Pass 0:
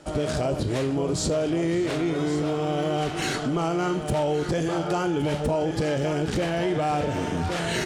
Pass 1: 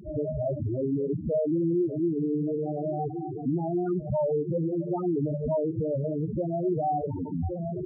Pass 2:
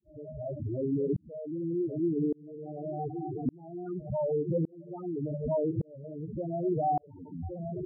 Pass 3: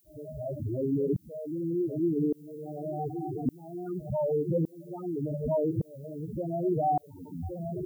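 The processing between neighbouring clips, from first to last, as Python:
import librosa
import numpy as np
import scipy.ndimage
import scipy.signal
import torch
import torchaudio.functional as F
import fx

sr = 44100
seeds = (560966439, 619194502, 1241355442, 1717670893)

y1 = fx.dmg_noise_band(x, sr, seeds[0], low_hz=32.0, high_hz=360.0, level_db=-41.0)
y1 = fx.spec_topn(y1, sr, count=4)
y2 = fx.tremolo_shape(y1, sr, shape='saw_up', hz=0.86, depth_pct=100)
y3 = fx.dmg_noise_colour(y2, sr, seeds[1], colour='violet', level_db=-69.0)
y3 = F.gain(torch.from_numpy(y3), 1.5).numpy()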